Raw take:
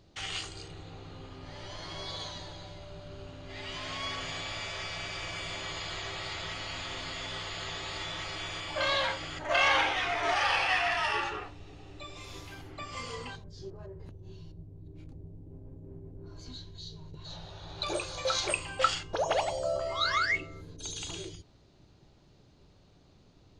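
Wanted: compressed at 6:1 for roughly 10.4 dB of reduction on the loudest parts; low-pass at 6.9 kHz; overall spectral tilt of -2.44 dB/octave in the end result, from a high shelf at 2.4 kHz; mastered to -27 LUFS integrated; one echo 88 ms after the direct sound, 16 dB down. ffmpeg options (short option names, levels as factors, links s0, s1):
-af "lowpass=6900,highshelf=f=2400:g=5,acompressor=threshold=0.0251:ratio=6,aecho=1:1:88:0.158,volume=2.99"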